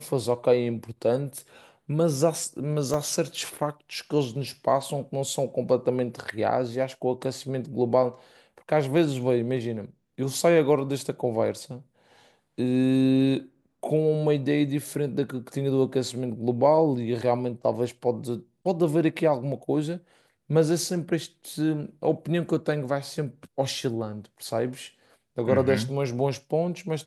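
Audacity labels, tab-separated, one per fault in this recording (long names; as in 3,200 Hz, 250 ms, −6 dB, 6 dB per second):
2.940000	2.940000	drop-out 3.6 ms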